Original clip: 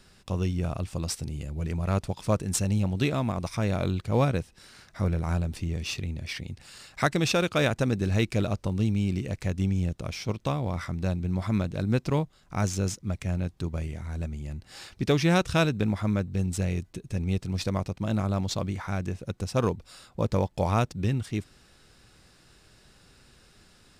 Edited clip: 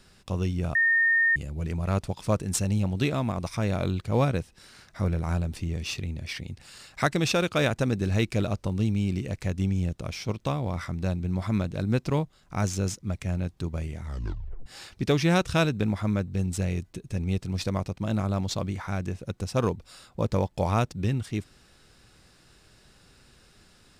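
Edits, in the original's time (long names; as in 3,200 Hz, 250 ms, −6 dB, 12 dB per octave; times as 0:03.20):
0:00.75–0:01.36: beep over 1,830 Hz −18.5 dBFS
0:14.03: tape stop 0.63 s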